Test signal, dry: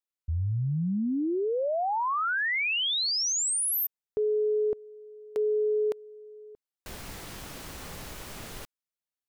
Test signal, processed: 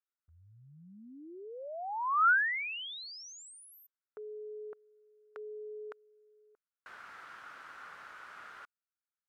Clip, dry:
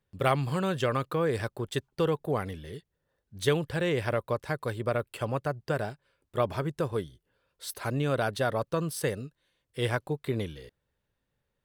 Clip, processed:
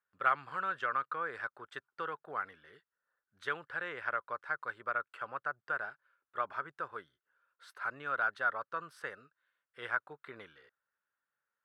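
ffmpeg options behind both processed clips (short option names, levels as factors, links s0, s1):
-af "bandpass=f=1400:t=q:w=4.7:csg=0,volume=1.78"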